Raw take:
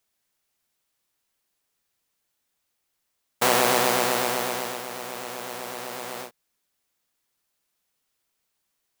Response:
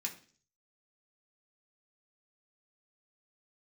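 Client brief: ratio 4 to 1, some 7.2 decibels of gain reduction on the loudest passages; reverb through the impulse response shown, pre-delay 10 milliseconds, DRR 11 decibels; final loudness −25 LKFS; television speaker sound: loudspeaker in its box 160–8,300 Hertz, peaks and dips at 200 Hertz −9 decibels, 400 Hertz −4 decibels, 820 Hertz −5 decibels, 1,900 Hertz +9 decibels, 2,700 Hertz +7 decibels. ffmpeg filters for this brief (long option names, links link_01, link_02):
-filter_complex "[0:a]acompressor=threshold=-23dB:ratio=4,asplit=2[link_01][link_02];[1:a]atrim=start_sample=2205,adelay=10[link_03];[link_02][link_03]afir=irnorm=-1:irlink=0,volume=-11dB[link_04];[link_01][link_04]amix=inputs=2:normalize=0,highpass=frequency=160:width=0.5412,highpass=frequency=160:width=1.3066,equalizer=frequency=200:width_type=q:width=4:gain=-9,equalizer=frequency=400:width_type=q:width=4:gain=-4,equalizer=frequency=820:width_type=q:width=4:gain=-5,equalizer=frequency=1900:width_type=q:width=4:gain=9,equalizer=frequency=2700:width_type=q:width=4:gain=7,lowpass=frequency=8300:width=0.5412,lowpass=frequency=8300:width=1.3066,volume=4dB"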